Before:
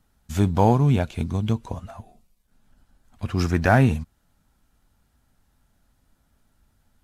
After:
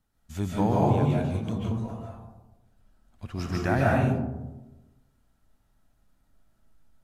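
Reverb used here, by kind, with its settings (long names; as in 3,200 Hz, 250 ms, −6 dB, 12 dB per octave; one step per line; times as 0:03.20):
comb and all-pass reverb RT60 1.1 s, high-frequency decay 0.3×, pre-delay 105 ms, DRR −4.5 dB
level −10 dB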